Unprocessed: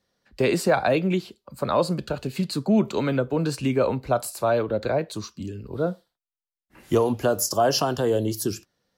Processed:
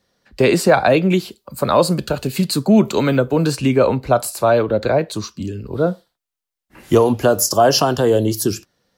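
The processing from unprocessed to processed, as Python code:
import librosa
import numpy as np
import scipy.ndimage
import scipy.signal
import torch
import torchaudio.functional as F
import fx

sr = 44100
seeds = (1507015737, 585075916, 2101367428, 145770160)

y = fx.high_shelf(x, sr, hz=8100.0, db=10.5, at=(1.1, 3.52))
y = F.gain(torch.from_numpy(y), 7.5).numpy()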